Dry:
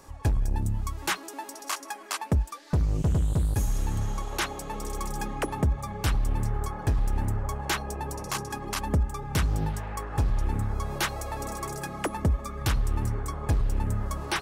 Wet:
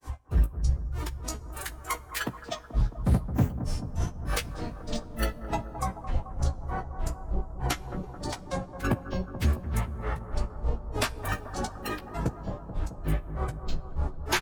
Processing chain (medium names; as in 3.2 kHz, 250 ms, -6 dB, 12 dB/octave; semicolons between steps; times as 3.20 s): granulator 186 ms, grains 3.3 per s, spray 12 ms, pitch spread up and down by 12 st; in parallel at +1.5 dB: compression, threshold -33 dBFS, peak gain reduction 11.5 dB; on the sum: doubling 15 ms -7.5 dB; formant-preserving pitch shift -2 st; on a send: bucket-brigade echo 217 ms, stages 2048, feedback 74%, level -11 dB; on the sum: two-slope reverb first 0.27 s, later 2.9 s, from -18 dB, DRR 15.5 dB